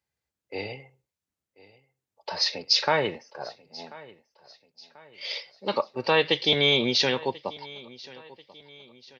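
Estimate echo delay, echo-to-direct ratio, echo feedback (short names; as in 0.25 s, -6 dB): 1.038 s, -20.0 dB, 43%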